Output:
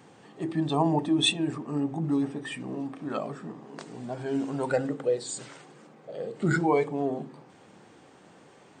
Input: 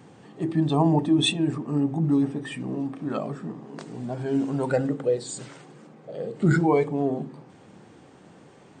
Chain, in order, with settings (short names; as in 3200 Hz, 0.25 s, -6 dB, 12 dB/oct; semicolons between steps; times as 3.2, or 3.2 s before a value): low shelf 310 Hz -8.5 dB